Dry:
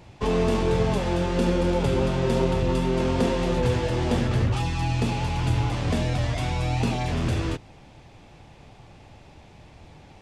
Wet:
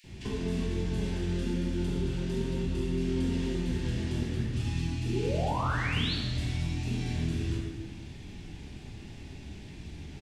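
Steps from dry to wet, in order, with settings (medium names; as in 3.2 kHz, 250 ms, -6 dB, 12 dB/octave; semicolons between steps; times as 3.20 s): high-order bell 800 Hz -13 dB; compression 6:1, threshold -35 dBFS, peak gain reduction 16 dB; painted sound rise, 5.00–6.15 s, 290–4600 Hz -38 dBFS; bands offset in time highs, lows 40 ms, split 1.9 kHz; plate-style reverb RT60 1.4 s, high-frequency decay 0.8×, DRR -4.5 dB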